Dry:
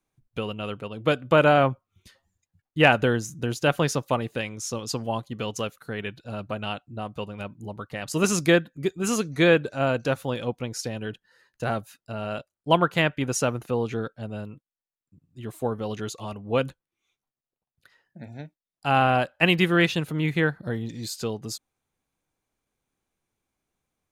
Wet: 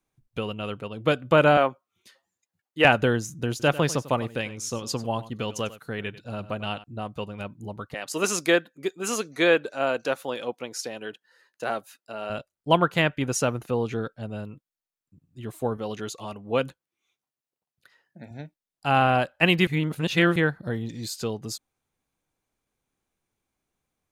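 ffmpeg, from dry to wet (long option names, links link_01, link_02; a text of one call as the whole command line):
ffmpeg -i in.wav -filter_complex "[0:a]asettb=1/sr,asplit=3[link_01][link_02][link_03];[link_01]atrim=end=1.574[link_04];[link_02]atrim=start=1.57:end=2.85,asetpts=PTS-STARTPTS,afade=type=in:duration=0.004:curve=qsin,afade=type=out:start_time=1.276:duration=0.004:curve=qsin,highpass=320[link_05];[link_03]atrim=start=2.846[link_06];[link_04][link_05]acrossfade=duration=0.004:curve1=hsin:curve2=qsin[link_07];[link_07][link_06]acrossfade=duration=0.004:curve1=qsin:curve2=hsin,asettb=1/sr,asplit=3[link_08][link_09][link_10];[link_08]atrim=end=3.504[link_11];[link_09]atrim=start=3.5:end=6.84,asetpts=PTS-STARTPTS,afade=type=in:duration=0.004:curve=qsin,afade=type=out:start_time=3.336:duration=0.004:curve=qsin,aecho=1:1:96:0.15,atrim=end_sample=147294[link_12];[link_10]atrim=start=6.836[link_13];[link_11][link_12]acrossfade=duration=0.004:curve1=hsin:curve2=qsin[link_14];[link_14][link_13]acrossfade=duration=0.004:curve1=qsin:curve2=hsin,asettb=1/sr,asplit=3[link_15][link_16][link_17];[link_15]atrim=end=7.944[link_18];[link_16]atrim=start=7.94:end=12.3,asetpts=PTS-STARTPTS,afade=type=in:duration=0.004:curve=qsin,afade=type=out:start_time=4.356:duration=0.004:curve=qsin,highpass=340[link_19];[link_17]atrim=start=12.296[link_20];[link_18][link_19]acrossfade=duration=0.004:curve1=hsin:curve2=qsin[link_21];[link_21][link_20]acrossfade=duration=0.004:curve1=qsin:curve2=hsin,asettb=1/sr,asplit=3[link_22][link_23][link_24];[link_22]atrim=end=15.774[link_25];[link_23]atrim=start=15.77:end=18.31,asetpts=PTS-STARTPTS,afade=type=in:duration=0.004:curve=qsin,afade=type=out:start_time=2.536:duration=0.004:curve=qsin,highpass=frequency=170:poles=1[link_26];[link_24]atrim=start=18.306[link_27];[link_25][link_26]acrossfade=duration=0.004:curve1=hsin:curve2=qsin[link_28];[link_28][link_27]acrossfade=duration=0.004:curve1=qsin:curve2=hsin,asplit=3[link_29][link_30][link_31];[link_29]atrim=end=19.672[link_32];[link_30]atrim=start=19.668:end=20.362,asetpts=PTS-STARTPTS,areverse[link_33];[link_31]atrim=start=20.358[link_34];[link_32][link_33]acrossfade=duration=0.004:curve1=hsin:curve2=hsin[link_35];[link_35][link_34]acrossfade=duration=0.004:curve1=hsin:curve2=hsin" out.wav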